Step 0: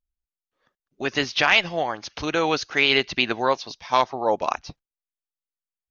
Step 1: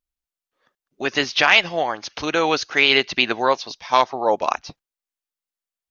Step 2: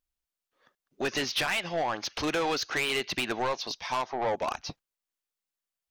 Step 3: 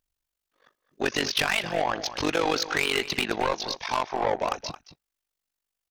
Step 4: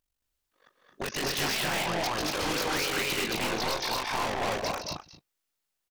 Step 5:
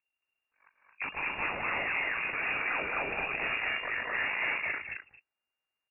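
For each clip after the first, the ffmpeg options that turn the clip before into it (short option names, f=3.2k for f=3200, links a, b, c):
-af "lowshelf=f=150:g=-9.5,volume=3.5dB"
-af "acompressor=threshold=-19dB:ratio=6,asoftclip=type=tanh:threshold=-23.5dB"
-filter_complex "[0:a]tremolo=f=48:d=0.889,asplit=2[a][b];[b]adelay=221.6,volume=-13dB,highshelf=f=4k:g=-4.99[c];[a][c]amix=inputs=2:normalize=0,volume=7dB"
-af "aeval=exprs='0.0531*(abs(mod(val(0)/0.0531+3,4)-2)-1)':c=same,aecho=1:1:151.6|221.6|256.6:0.398|0.794|0.631,volume=-1dB"
-af "lowpass=f=2.4k:t=q:w=0.5098,lowpass=f=2.4k:t=q:w=0.6013,lowpass=f=2.4k:t=q:w=0.9,lowpass=f=2.4k:t=q:w=2.563,afreqshift=-2800,volume=-1.5dB"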